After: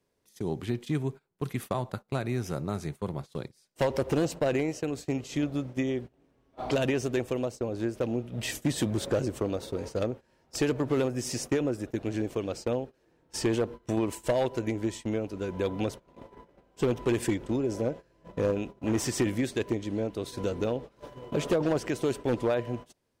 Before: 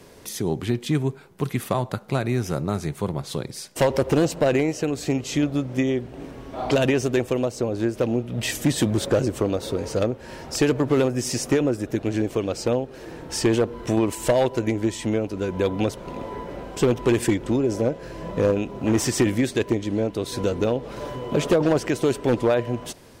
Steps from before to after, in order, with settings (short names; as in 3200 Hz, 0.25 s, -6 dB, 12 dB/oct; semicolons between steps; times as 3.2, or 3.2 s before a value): gate -30 dBFS, range -22 dB; gain -7 dB